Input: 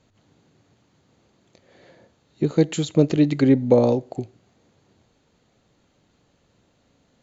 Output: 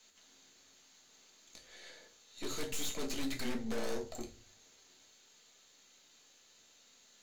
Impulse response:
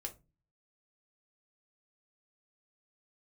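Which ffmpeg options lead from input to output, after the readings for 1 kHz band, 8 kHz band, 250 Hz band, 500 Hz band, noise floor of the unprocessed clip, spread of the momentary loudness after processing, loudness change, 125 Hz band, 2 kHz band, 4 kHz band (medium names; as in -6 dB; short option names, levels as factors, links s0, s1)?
-14.5 dB, no reading, -22.0 dB, -21.5 dB, -65 dBFS, 19 LU, -20.5 dB, -28.5 dB, -7.5 dB, -5.0 dB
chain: -filter_complex "[0:a]aderivative,afreqshift=-21,aeval=exprs='0.0188*(abs(mod(val(0)/0.0188+3,4)-2)-1)':c=same,aeval=exprs='(tanh(501*val(0)+0.65)-tanh(0.65))/501':c=same[s0];[1:a]atrim=start_sample=2205,asetrate=32634,aresample=44100[s1];[s0][s1]afir=irnorm=-1:irlink=0,volume=7.08"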